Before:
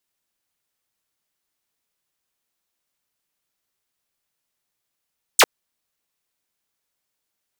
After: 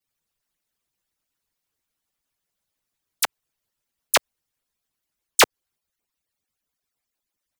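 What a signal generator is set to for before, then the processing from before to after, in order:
single falling chirp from 9,700 Hz, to 330 Hz, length 0.05 s saw, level −6 dB
harmonic-percussive split with one part muted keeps percussive
low-shelf EQ 180 Hz +7 dB
delay with pitch and tempo change per echo 99 ms, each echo +5 semitones, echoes 2

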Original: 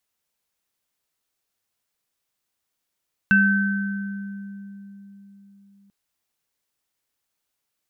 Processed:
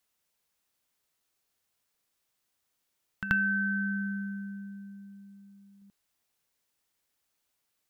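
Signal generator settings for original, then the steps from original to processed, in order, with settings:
inharmonic partials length 2.59 s, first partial 199 Hz, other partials 1,540/2,660 Hz, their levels 3.5/−12.5 dB, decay 4.21 s, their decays 1.85/0.31 s, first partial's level −16.5 dB
downward compressor 5 to 1, threshold −25 dBFS
backwards echo 83 ms −10 dB

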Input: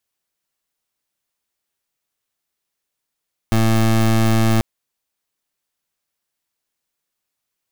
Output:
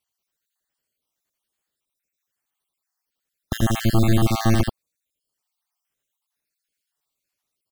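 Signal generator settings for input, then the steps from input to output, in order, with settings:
pulse wave 112 Hz, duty 23% −14.5 dBFS 1.09 s
time-frequency cells dropped at random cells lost 61%
on a send: single-tap delay 83 ms −3.5 dB

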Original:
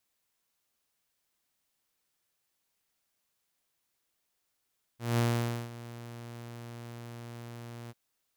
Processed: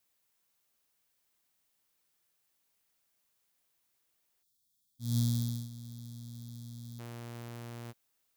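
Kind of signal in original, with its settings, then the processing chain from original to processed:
note with an ADSR envelope saw 118 Hz, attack 190 ms, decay 507 ms, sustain −18 dB, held 2.91 s, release 33 ms −21.5 dBFS
gain on a spectral selection 0:04.43–0:06.99, 260–3,200 Hz −24 dB
high-shelf EQ 12,000 Hz +5.5 dB

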